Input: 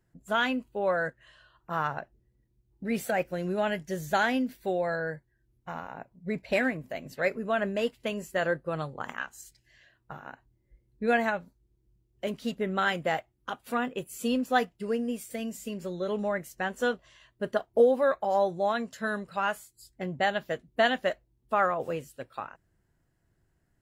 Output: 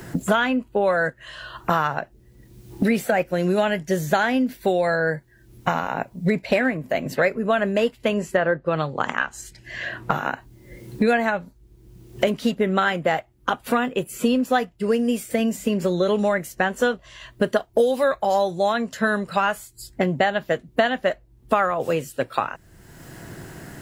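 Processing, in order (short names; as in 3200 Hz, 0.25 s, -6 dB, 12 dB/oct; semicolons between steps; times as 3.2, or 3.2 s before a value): 8.17–10.12 treble ducked by the level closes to 2000 Hz, closed at -25 dBFS; three-band squash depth 100%; gain +7.5 dB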